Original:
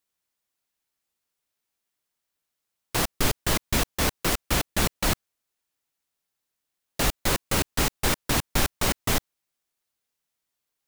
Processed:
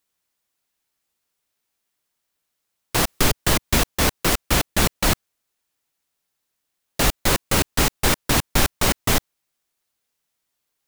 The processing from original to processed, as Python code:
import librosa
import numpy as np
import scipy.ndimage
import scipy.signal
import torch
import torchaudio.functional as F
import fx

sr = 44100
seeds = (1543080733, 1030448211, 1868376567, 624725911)

y = fx.band_squash(x, sr, depth_pct=40, at=(3.07, 3.79))
y = y * librosa.db_to_amplitude(5.0)